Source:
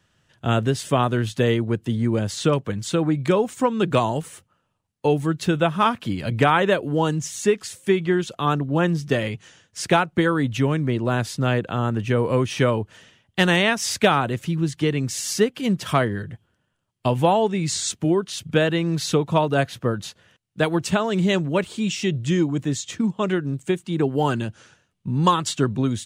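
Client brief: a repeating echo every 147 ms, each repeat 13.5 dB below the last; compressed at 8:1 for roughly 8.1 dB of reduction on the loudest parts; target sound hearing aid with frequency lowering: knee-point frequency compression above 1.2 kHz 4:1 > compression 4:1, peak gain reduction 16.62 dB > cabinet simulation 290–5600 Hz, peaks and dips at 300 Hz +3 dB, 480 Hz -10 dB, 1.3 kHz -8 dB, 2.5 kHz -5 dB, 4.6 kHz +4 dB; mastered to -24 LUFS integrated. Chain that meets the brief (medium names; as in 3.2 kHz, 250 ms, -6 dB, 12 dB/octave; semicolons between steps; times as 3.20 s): compression 8:1, threshold -21 dBFS; feedback delay 147 ms, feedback 21%, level -13.5 dB; knee-point frequency compression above 1.2 kHz 4:1; compression 4:1, threshold -37 dBFS; cabinet simulation 290–5600 Hz, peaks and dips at 300 Hz +3 dB, 480 Hz -10 dB, 1.3 kHz -8 dB, 2.5 kHz -5 dB, 4.6 kHz +4 dB; trim +18.5 dB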